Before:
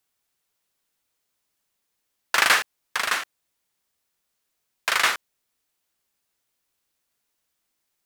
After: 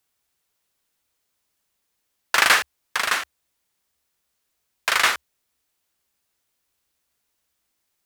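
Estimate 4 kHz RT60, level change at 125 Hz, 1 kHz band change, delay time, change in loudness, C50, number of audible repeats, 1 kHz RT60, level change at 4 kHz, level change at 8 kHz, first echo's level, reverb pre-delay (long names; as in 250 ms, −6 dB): no reverb audible, can't be measured, +2.0 dB, no echo audible, +2.0 dB, no reverb audible, no echo audible, no reverb audible, +2.0 dB, +2.0 dB, no echo audible, no reverb audible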